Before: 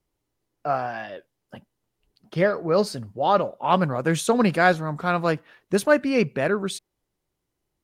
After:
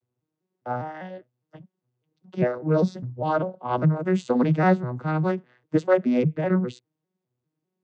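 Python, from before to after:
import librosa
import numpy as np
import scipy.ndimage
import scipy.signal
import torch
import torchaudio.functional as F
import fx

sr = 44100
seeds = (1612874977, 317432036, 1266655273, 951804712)

y = fx.vocoder_arp(x, sr, chord='major triad', root=47, every_ms=201)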